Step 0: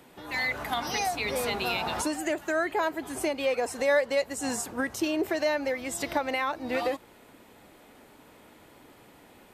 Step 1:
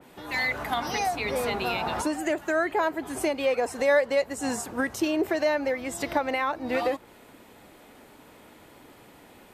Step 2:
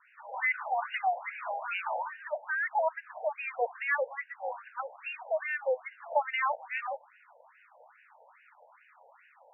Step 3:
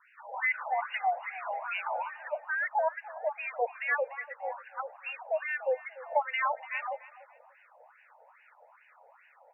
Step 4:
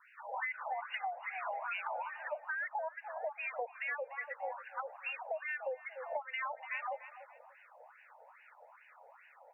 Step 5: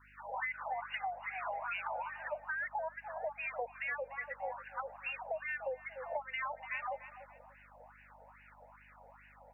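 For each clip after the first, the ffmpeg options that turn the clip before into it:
-af "adynamicequalizer=threshold=0.00708:dfrequency=2400:dqfactor=0.7:tfrequency=2400:tqfactor=0.7:attack=5:release=100:ratio=0.375:range=3:mode=cutabove:tftype=highshelf,volume=2.5dB"
-af "afftfilt=real='re*between(b*sr/1024,650*pow(2100/650,0.5+0.5*sin(2*PI*2.4*pts/sr))/1.41,650*pow(2100/650,0.5+0.5*sin(2*PI*2.4*pts/sr))*1.41)':imag='im*between(b*sr/1024,650*pow(2100/650,0.5+0.5*sin(2*PI*2.4*pts/sr))/1.41,650*pow(2100/650,0.5+0.5*sin(2*PI*2.4*pts/sr))*1.41)':win_size=1024:overlap=0.75"
-af "aecho=1:1:292|584:0.126|0.0327"
-af "acompressor=threshold=-35dB:ratio=16"
-af "aeval=exprs='val(0)+0.000562*(sin(2*PI*50*n/s)+sin(2*PI*2*50*n/s)/2+sin(2*PI*3*50*n/s)/3+sin(2*PI*4*50*n/s)/4+sin(2*PI*5*50*n/s)/5)':c=same"

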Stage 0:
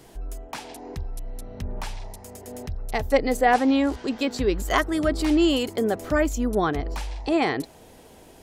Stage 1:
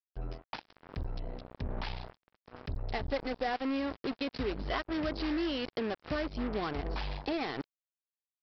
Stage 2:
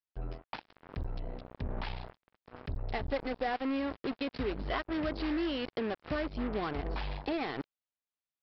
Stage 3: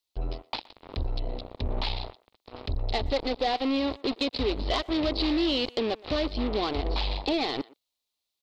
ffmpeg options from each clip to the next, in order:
-af "acompressor=threshold=-26dB:ratio=4,aresample=11025,acrusher=bits=4:mix=0:aa=0.5,aresample=44100,volume=-5.5dB"
-af "lowpass=4k"
-filter_complex "[0:a]aeval=exprs='0.112*sin(PI/2*1.78*val(0)/0.112)':c=same,equalizer=f=160:t=o:w=0.67:g=-11,equalizer=f=1.6k:t=o:w=0.67:g=-11,equalizer=f=4k:t=o:w=0.67:g=11,asplit=2[a][b];[b]adelay=120,highpass=300,lowpass=3.4k,asoftclip=type=hard:threshold=-24.5dB,volume=-21dB[c];[a][c]amix=inputs=2:normalize=0"

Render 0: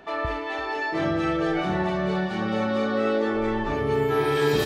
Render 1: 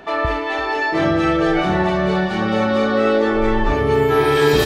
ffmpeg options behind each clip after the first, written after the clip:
-af "asubboost=boost=3.5:cutoff=71,volume=8dB"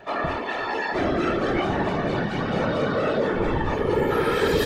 -af "afftfilt=real='hypot(re,im)*cos(2*PI*random(0))':imag='hypot(re,im)*sin(2*PI*random(1))':win_size=512:overlap=0.75,asoftclip=type=tanh:threshold=-10.5dB"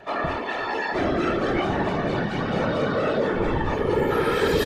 -af "aresample=32000,aresample=44100"

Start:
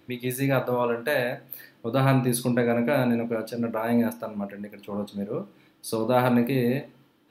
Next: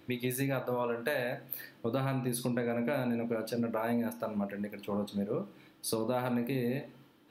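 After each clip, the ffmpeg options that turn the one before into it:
-af "acompressor=threshold=-29dB:ratio=6"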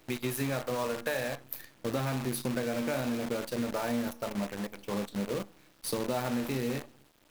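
-af "acrusher=bits=7:dc=4:mix=0:aa=0.000001"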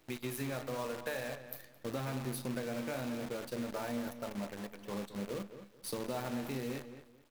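-filter_complex "[0:a]asplit=2[a][b];[b]adelay=218,lowpass=f=3.1k:p=1,volume=-11dB,asplit=2[c][d];[d]adelay=218,lowpass=f=3.1k:p=1,volume=0.25,asplit=2[e][f];[f]adelay=218,lowpass=f=3.1k:p=1,volume=0.25[g];[a][c][e][g]amix=inputs=4:normalize=0,volume=-6.5dB"

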